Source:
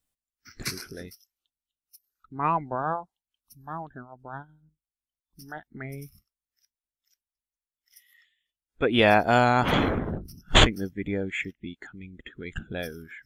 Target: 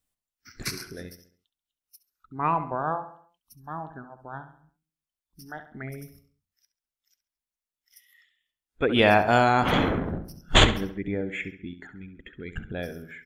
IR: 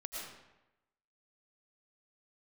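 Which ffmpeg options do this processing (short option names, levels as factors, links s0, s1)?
-filter_complex "[0:a]asettb=1/sr,asplit=3[s0][s1][s2];[s0]atrim=end=10.924[s3];[s1]atrim=start=10.92:end=12.88,asetpts=PTS-STARTPTS,afade=t=in:d=0.004:c=qsin,afade=t=out:st=1.956:d=0.004:c=qsin,highshelf=f=3200:g=-8.5[s4];[s2]atrim=start=12.876[s5];[s3][s4]acrossfade=d=0.004:c1=hsin:c2=qsin[s6];[s6][s5]acrossfade=d=0.004:c1=qsin:c2=hsin,asplit=2[s7][s8];[s8]adelay=68,lowpass=f=4200:p=1,volume=0.282,asplit=2[s9][s10];[s10]adelay=68,lowpass=f=4200:p=1,volume=0.47,asplit=2[s11][s12];[s12]adelay=68,lowpass=f=4200:p=1,volume=0.47,asplit=2[s13][s14];[s14]adelay=68,lowpass=f=4200:p=1,volume=0.47,asplit=2[s15][s16];[s16]adelay=68,lowpass=f=4200:p=1,volume=0.47[s17];[s7][s9][s11][s13][s15][s17]amix=inputs=6:normalize=0"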